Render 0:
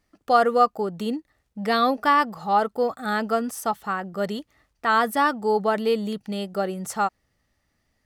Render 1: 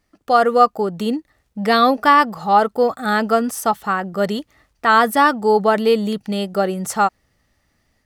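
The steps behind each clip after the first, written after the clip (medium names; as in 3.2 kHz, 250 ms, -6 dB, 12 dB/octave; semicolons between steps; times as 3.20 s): level rider gain up to 4 dB; trim +3 dB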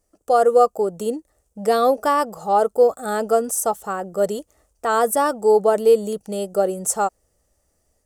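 ten-band graphic EQ 125 Hz -8 dB, 250 Hz -8 dB, 500 Hz +6 dB, 1 kHz -5 dB, 2 kHz -12 dB, 4 kHz -11 dB, 8 kHz +10 dB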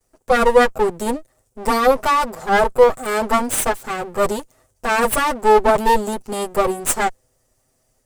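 comb filter that takes the minimum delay 7.8 ms; trim +4.5 dB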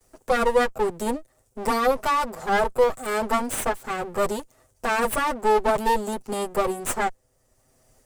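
three bands compressed up and down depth 40%; trim -6 dB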